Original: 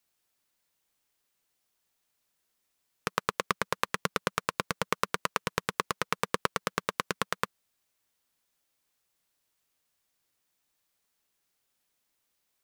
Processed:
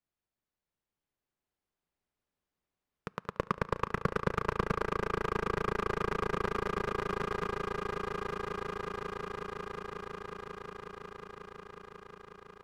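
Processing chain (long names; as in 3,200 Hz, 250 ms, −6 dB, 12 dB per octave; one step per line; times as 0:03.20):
0:03.30–0:04.82: leveller curve on the samples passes 3
low-pass filter 1,400 Hz 6 dB per octave
low-shelf EQ 240 Hz +7.5 dB
echo that builds up and dies away 181 ms, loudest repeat 8, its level −7.5 dB
on a send at −22 dB: convolution reverb RT60 3.4 s, pre-delay 5 ms
on the sum: level −8.5 dB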